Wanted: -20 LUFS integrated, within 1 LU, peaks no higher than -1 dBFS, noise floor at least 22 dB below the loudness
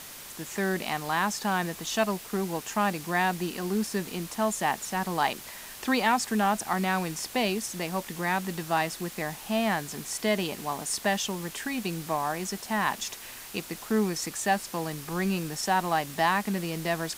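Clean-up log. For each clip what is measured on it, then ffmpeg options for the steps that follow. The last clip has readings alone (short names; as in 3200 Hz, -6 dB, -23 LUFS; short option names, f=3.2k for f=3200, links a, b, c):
noise floor -44 dBFS; noise floor target -51 dBFS; loudness -29.0 LUFS; peak -10.5 dBFS; loudness target -20.0 LUFS
-> -af "afftdn=nr=7:nf=-44"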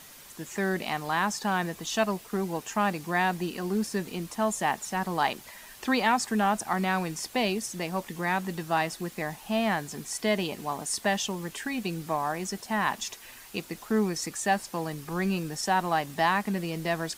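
noise floor -49 dBFS; noise floor target -51 dBFS
-> -af "afftdn=nr=6:nf=-49"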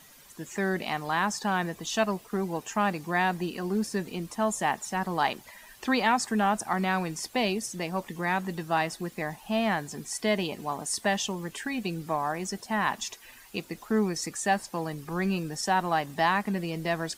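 noise floor -53 dBFS; loudness -29.5 LUFS; peak -11.0 dBFS; loudness target -20.0 LUFS
-> -af "volume=9.5dB"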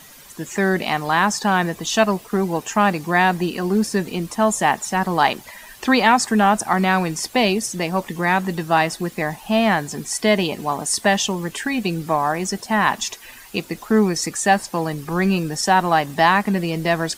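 loudness -20.0 LUFS; peak -1.5 dBFS; noise floor -43 dBFS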